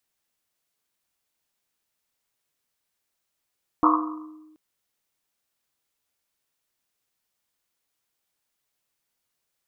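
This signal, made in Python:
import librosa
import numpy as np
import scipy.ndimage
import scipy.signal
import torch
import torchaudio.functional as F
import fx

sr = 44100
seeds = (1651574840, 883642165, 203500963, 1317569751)

y = fx.risset_drum(sr, seeds[0], length_s=0.73, hz=310.0, decay_s=1.32, noise_hz=1100.0, noise_width_hz=290.0, noise_pct=55)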